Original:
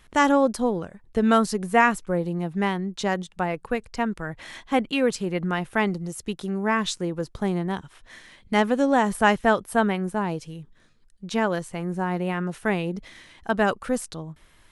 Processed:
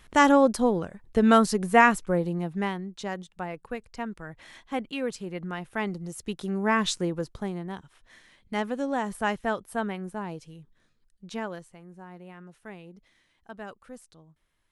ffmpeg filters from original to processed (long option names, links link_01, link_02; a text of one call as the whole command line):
ffmpeg -i in.wav -af "volume=9.5dB,afade=type=out:start_time=2.03:duration=0.89:silence=0.354813,afade=type=in:start_time=5.68:duration=1.3:silence=0.354813,afade=type=out:start_time=6.98:duration=0.54:silence=0.354813,afade=type=out:start_time=11.29:duration=0.51:silence=0.298538" out.wav